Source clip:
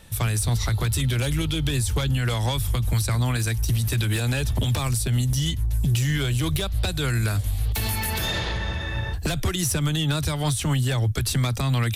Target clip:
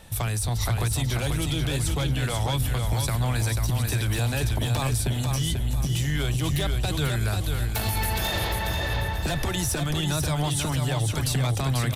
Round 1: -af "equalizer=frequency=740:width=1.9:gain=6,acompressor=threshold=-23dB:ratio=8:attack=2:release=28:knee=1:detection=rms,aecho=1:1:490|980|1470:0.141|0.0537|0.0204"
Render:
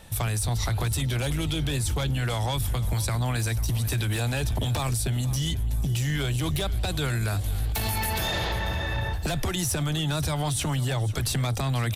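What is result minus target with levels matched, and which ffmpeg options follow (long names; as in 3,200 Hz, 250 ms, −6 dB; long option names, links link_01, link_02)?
echo-to-direct −12 dB
-af "equalizer=frequency=740:width=1.9:gain=6,acompressor=threshold=-23dB:ratio=8:attack=2:release=28:knee=1:detection=rms,aecho=1:1:490|980|1470|1960|2450:0.562|0.214|0.0812|0.0309|0.0117"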